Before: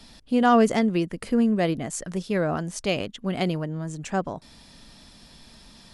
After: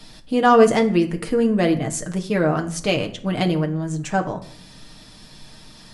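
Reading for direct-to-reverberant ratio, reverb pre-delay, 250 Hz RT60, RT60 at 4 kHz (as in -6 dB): 3.0 dB, 6 ms, 0.85 s, 0.40 s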